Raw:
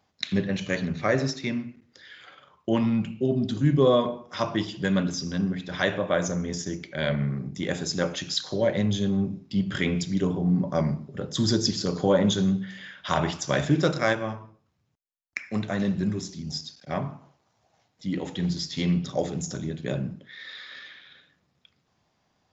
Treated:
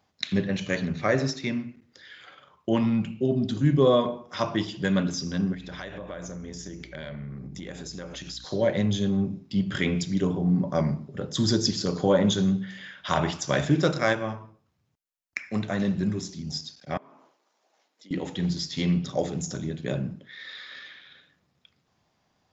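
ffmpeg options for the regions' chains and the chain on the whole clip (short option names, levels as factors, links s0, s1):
-filter_complex "[0:a]asettb=1/sr,asplit=3[s0][s1][s2];[s0]atrim=end=5.544[s3];[s1]atrim=start=5.54:end=8.45,asetpts=PTS-STARTPTS,afade=t=in:d=0.004:c=qsin,afade=t=out:st=2.906:d=0.004:c=qsin,acompressor=threshold=0.0178:ratio=5:attack=3.2:release=140:knee=1:detection=peak,aeval=exprs='val(0)+0.00355*(sin(2*PI*60*n/s)+sin(2*PI*2*60*n/s)/2+sin(2*PI*3*60*n/s)/3+sin(2*PI*4*60*n/s)/4+sin(2*PI*5*60*n/s)/5)':c=same[s4];[s2]atrim=start=8.446[s5];[s3][s4]acrossfade=d=0.004:c1=hsin:c2=qsin[s6];[s6][s5]acrossfade=d=0.004:c1=qsin:c2=hsin,asettb=1/sr,asplit=3[s7][s8][s9];[s7]atrim=end=16.974[s10];[s8]atrim=start=16.97:end=18.11,asetpts=PTS-STARTPTS,afade=t=in:d=0.004:c=qsin,afade=t=out:st=1.136:d=0.004:c=qsin,highpass=f=290:w=0.5412,highpass=f=290:w=1.3066,equalizer=f=730:w=5.5:g=-4.5,acompressor=threshold=0.00355:ratio=5:attack=3.2:release=140:knee=1:detection=peak[s11];[s9]atrim=start=18.106[s12];[s10][s11]acrossfade=d=0.004:c1=hsin:c2=qsin[s13];[s13][s12]acrossfade=d=0.004:c1=qsin:c2=hsin"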